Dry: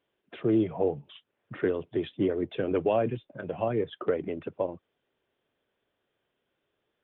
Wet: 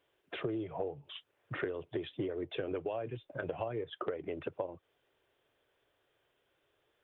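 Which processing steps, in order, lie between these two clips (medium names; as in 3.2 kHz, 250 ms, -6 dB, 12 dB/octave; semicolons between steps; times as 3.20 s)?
peaking EQ 210 Hz -13 dB 0.64 oct; compression 16:1, threshold -37 dBFS, peak gain reduction 16.5 dB; trim +4 dB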